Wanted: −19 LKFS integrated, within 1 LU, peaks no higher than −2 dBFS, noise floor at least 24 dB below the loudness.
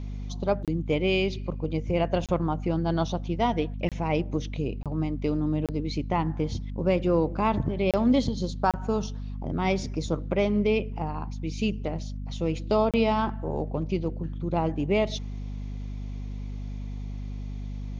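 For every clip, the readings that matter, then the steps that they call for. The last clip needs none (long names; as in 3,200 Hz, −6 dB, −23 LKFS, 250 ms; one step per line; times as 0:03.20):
number of dropouts 8; longest dropout 27 ms; mains hum 50 Hz; hum harmonics up to 250 Hz; level of the hum −32 dBFS; integrated loudness −28.0 LKFS; sample peak −10.5 dBFS; target loudness −19.0 LKFS
→ repair the gap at 0:00.65/0:02.26/0:03.89/0:04.83/0:05.66/0:07.91/0:08.71/0:12.91, 27 ms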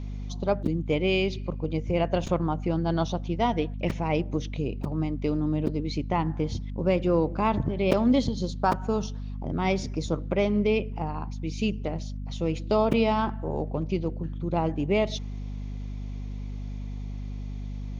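number of dropouts 0; mains hum 50 Hz; hum harmonics up to 250 Hz; level of the hum −32 dBFS
→ hum removal 50 Hz, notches 5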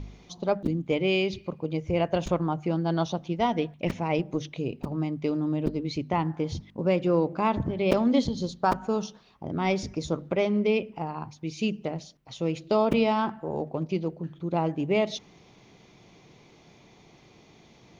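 mains hum none found; integrated loudness −28.0 LKFS; sample peak −8.5 dBFS; target loudness −19.0 LKFS
→ level +9 dB
brickwall limiter −2 dBFS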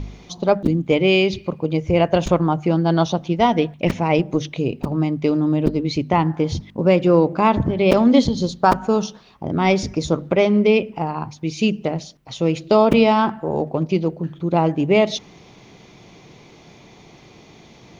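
integrated loudness −19.0 LKFS; sample peak −2.0 dBFS; background noise floor −47 dBFS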